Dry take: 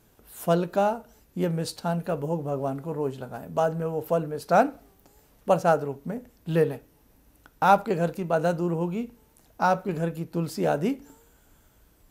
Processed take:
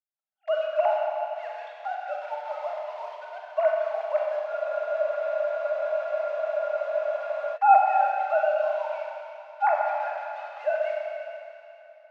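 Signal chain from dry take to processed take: formants replaced by sine waves; expander -46 dBFS; in parallel at -9 dB: word length cut 6-bit, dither none; on the sum: rippled Chebyshev high-pass 590 Hz, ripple 6 dB; distance through air 200 m; Schroeder reverb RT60 3 s, combs from 30 ms, DRR -2 dB; spectral freeze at 4.51 s, 3.05 s

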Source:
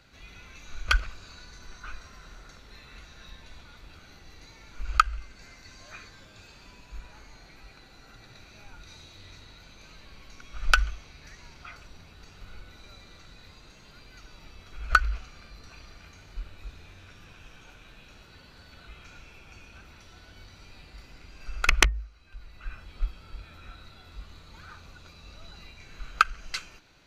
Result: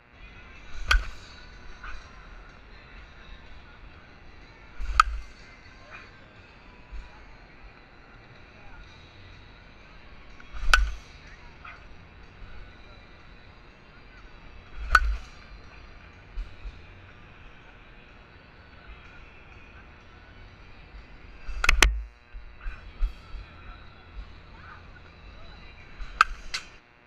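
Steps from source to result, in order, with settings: level-controlled noise filter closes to 2.3 kHz, open at -27 dBFS; mains buzz 120 Hz, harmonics 23, -61 dBFS 0 dB/octave; trim +1.5 dB

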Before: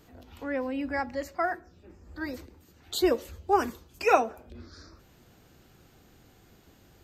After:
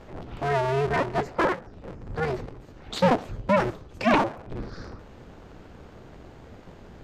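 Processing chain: cycle switcher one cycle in 2, inverted; in parallel at +1.5 dB: compression, threshold -39 dBFS, peak gain reduction 22 dB; on the sum: treble shelf 2.3 kHz -11.5 dB; sine folder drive 9 dB, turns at -7 dBFS; distance through air 59 m; trim -7 dB

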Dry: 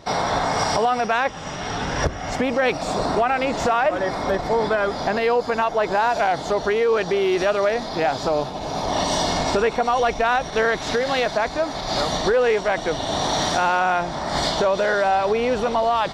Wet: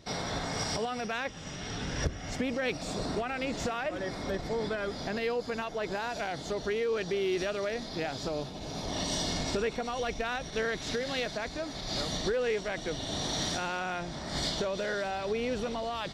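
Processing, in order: peaking EQ 900 Hz -11.5 dB 1.6 oct; trim -6.5 dB

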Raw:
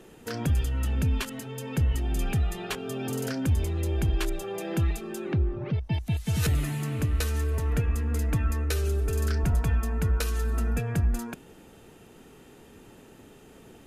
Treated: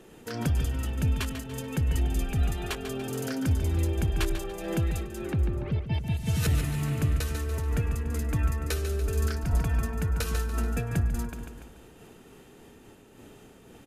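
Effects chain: feedback delay 144 ms, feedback 50%, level -9 dB; random flutter of the level, depth 60%; trim +1.5 dB

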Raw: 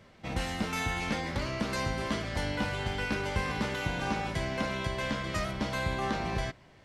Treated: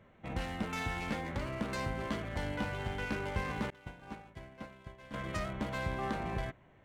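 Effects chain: local Wiener filter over 9 samples; 3.70–5.14 s: expander -22 dBFS; trim -4 dB

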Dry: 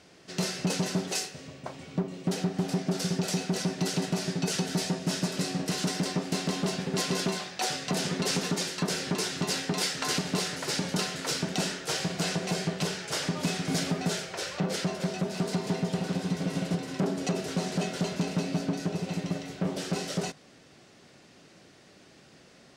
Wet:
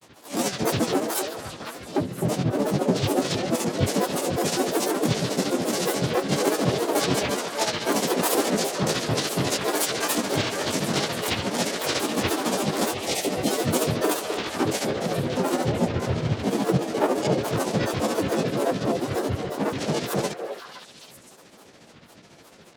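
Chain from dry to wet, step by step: spectrogram pixelated in time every 50 ms; granulator, grains 14 per s, spray 18 ms, pitch spread up and down by 12 st; dynamic bell 460 Hz, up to +4 dB, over -48 dBFS, Q 1.4; harmony voices -7 st -17 dB, +5 st 0 dB; spectral selection erased 12.94–13.47 s, 900–1800 Hz; repeats whose band climbs or falls 258 ms, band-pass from 530 Hz, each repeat 1.4 oct, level -3 dB; trim +5.5 dB

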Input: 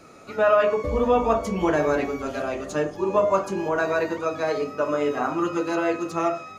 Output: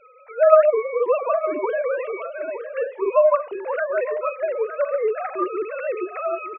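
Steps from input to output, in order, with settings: formants replaced by sine waves; on a send: delay 911 ms -12.5 dB; on the sum: trim +1.5 dB

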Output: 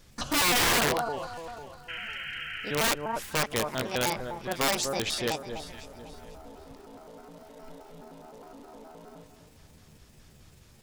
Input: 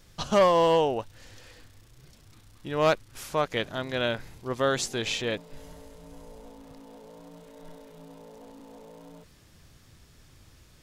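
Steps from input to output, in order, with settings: pitch shift switched off and on +6.5 st, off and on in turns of 104 ms; painted sound noise, 1.88–2.80 s, 1.3–3.2 kHz -38 dBFS; echo whose repeats swap between lows and highs 249 ms, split 1.4 kHz, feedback 53%, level -8 dB; integer overflow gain 19 dB

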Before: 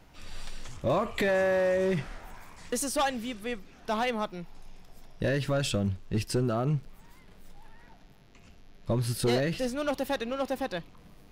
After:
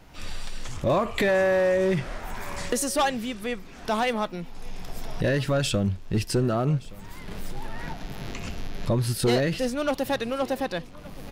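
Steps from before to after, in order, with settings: recorder AGC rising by 24 dB/s; delay 1171 ms -22 dB; trim +4 dB

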